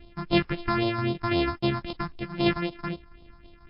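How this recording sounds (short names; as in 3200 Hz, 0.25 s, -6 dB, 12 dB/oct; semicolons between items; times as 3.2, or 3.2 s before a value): a buzz of ramps at a fixed pitch in blocks of 128 samples; phasing stages 4, 3.8 Hz, lowest notch 470–1700 Hz; tremolo saw down 6.1 Hz, depth 40%; MP3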